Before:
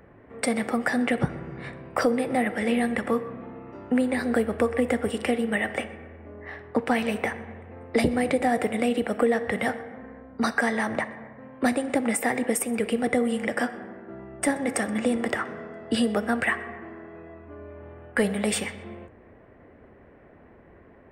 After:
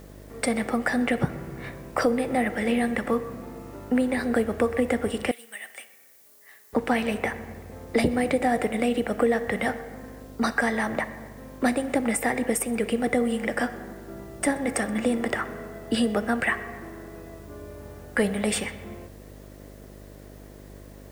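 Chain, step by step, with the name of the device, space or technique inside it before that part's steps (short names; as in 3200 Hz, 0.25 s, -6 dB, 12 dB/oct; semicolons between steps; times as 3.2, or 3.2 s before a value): video cassette with head-switching buzz (buzz 50 Hz, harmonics 13, -46 dBFS -4 dB/oct; white noise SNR 31 dB); 5.31–6.73 differentiator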